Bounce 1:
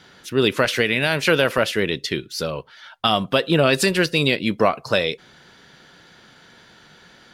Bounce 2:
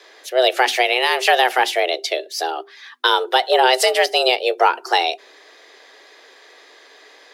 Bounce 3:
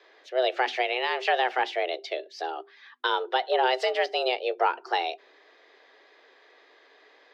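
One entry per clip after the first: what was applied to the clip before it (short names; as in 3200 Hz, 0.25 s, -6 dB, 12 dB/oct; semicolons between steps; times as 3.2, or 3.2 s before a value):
notches 50/100/150 Hz; frequency shift +250 Hz; gain +2.5 dB
air absorption 200 m; gain -8 dB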